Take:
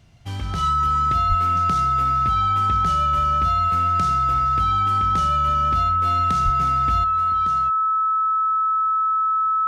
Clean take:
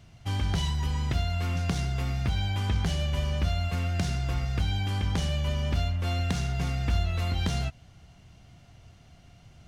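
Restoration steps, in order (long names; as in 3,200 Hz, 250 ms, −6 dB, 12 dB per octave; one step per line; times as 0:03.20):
notch filter 1,300 Hz, Q 30
0:01.28–0:01.40: high-pass filter 140 Hz 24 dB per octave
0:06.44–0:06.56: high-pass filter 140 Hz 24 dB per octave
level 0 dB, from 0:07.04 +9 dB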